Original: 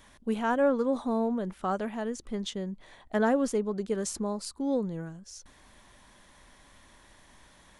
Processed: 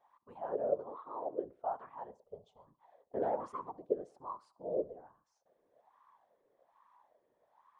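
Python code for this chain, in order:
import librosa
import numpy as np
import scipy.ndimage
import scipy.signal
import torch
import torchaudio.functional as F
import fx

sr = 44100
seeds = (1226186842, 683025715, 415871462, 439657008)

y = fx.leveller(x, sr, passes=2, at=(3.17, 3.7))
y = fx.wah_lfo(y, sr, hz=1.2, low_hz=460.0, high_hz=1100.0, q=14.0)
y = fx.whisperise(y, sr, seeds[0])
y = fx.cabinet(y, sr, low_hz=190.0, low_slope=12, high_hz=4000.0, hz=(200.0, 330.0, 490.0, 790.0, 2000.0, 2900.0), db=(-8, 7, 6, -6, 9, 9), at=(0.9, 1.44))
y = fx.fixed_phaser(y, sr, hz=750.0, stages=4, at=(2.11, 2.67))
y = fx.echo_feedback(y, sr, ms=67, feedback_pct=39, wet_db=-22.0)
y = y * 10.0 ** (4.0 / 20.0)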